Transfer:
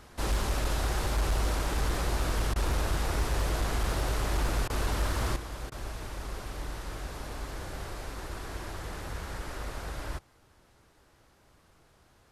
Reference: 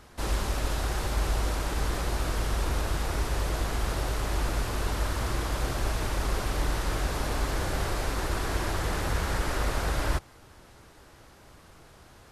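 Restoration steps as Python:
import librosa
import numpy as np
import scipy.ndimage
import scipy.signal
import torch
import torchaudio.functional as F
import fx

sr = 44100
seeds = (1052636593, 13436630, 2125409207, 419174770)

y = fx.fix_declip(x, sr, threshold_db=-22.0)
y = fx.fix_interpolate(y, sr, at_s=(2.54, 4.68, 5.7), length_ms=17.0)
y = fx.gain(y, sr, db=fx.steps((0.0, 0.0), (5.36, 9.5)))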